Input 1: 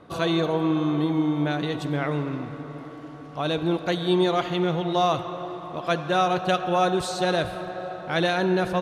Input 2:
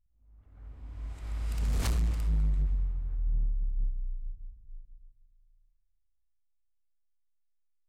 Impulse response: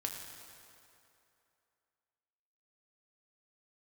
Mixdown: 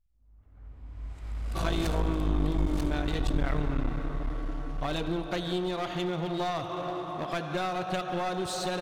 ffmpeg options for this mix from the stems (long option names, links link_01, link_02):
-filter_complex "[0:a]highshelf=frequency=5100:gain=6.5,bandreject=frequency=490:width=16,acompressor=threshold=-27dB:ratio=5,adelay=1450,volume=-2.5dB,asplit=2[link_01][link_02];[link_02]volume=-7.5dB[link_03];[1:a]volume=0dB,asplit=2[link_04][link_05];[link_05]volume=-4.5dB[link_06];[2:a]atrim=start_sample=2205[link_07];[link_03][link_07]afir=irnorm=-1:irlink=0[link_08];[link_06]aecho=0:1:939:1[link_09];[link_01][link_04][link_08][link_09]amix=inputs=4:normalize=0,highshelf=frequency=6000:gain=-5.5,aeval=exprs='clip(val(0),-1,0.0316)':channel_layout=same"